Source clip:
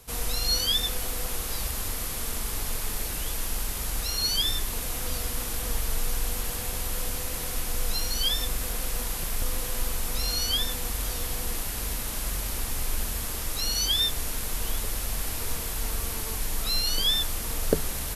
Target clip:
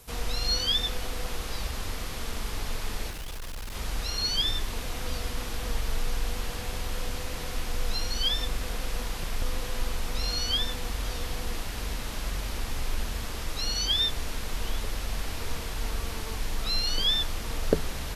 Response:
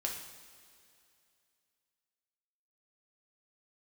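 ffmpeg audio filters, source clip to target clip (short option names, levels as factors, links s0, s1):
-filter_complex "[0:a]asettb=1/sr,asplit=3[s0][s1][s2];[s0]atrim=end=3.104[s3];[s1]atrim=start=3.1:end=3.75,asetpts=PTS-STARTPTS,afade=t=in:d=0.004:c=qsin,afade=t=out:st=0.646:d=0.004:c=qsin,asoftclip=type=hard:threshold=0.0237[s4];[s2]atrim=start=3.746[s5];[s3][s4]acrossfade=d=0.004:c1=hsin:c2=qsin[s6];[s6][s5]acrossfade=d=0.004:c1=qsin:c2=hsin,acrossover=split=5900[s7][s8];[s8]acompressor=threshold=0.00355:ratio=4:attack=1:release=60[s9];[s7][s9]amix=inputs=2:normalize=0"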